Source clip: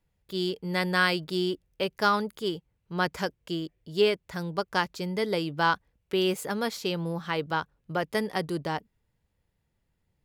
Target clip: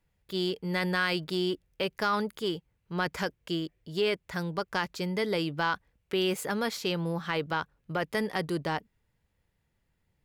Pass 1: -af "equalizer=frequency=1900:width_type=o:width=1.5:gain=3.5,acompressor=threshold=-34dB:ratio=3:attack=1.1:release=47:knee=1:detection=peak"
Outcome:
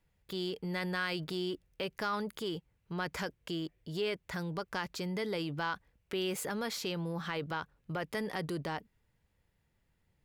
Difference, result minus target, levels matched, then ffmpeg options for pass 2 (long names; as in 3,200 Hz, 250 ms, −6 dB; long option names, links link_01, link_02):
downward compressor: peak gain reduction +6.5 dB
-af "equalizer=frequency=1900:width_type=o:width=1.5:gain=3.5,acompressor=threshold=-24dB:ratio=3:attack=1.1:release=47:knee=1:detection=peak"